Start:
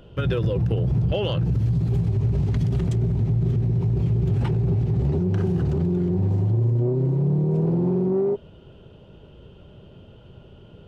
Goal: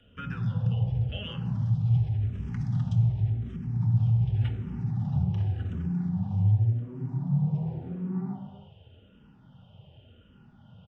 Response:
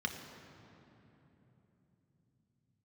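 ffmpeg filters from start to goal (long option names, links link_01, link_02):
-filter_complex "[0:a]equalizer=frequency=100:width_type=o:width=0.33:gain=4,equalizer=frequency=160:width_type=o:width=0.33:gain=-3,equalizer=frequency=400:width_type=o:width=0.33:gain=-11,equalizer=frequency=800:width_type=o:width=0.33:gain=8,acrossover=split=260|570|1400[link_01][link_02][link_03][link_04];[link_02]acompressor=threshold=-47dB:ratio=6[link_05];[link_01][link_05][link_03][link_04]amix=inputs=4:normalize=0,aresample=22050,aresample=44100[link_06];[1:a]atrim=start_sample=2205,afade=type=out:start_time=0.41:duration=0.01,atrim=end_sample=18522[link_07];[link_06][link_07]afir=irnorm=-1:irlink=0,asplit=2[link_08][link_09];[link_09]afreqshift=-0.89[link_10];[link_08][link_10]amix=inputs=2:normalize=1,volume=-8.5dB"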